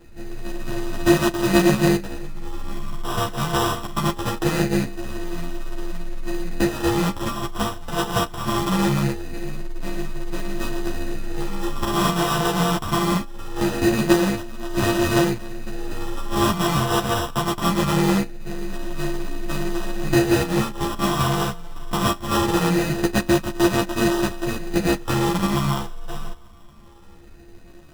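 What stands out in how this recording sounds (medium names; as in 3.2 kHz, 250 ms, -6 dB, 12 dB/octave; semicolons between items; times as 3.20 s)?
a buzz of ramps at a fixed pitch in blocks of 128 samples; phasing stages 12, 0.22 Hz, lowest notch 430–1800 Hz; aliases and images of a low sample rate 2.2 kHz, jitter 0%; a shimmering, thickened sound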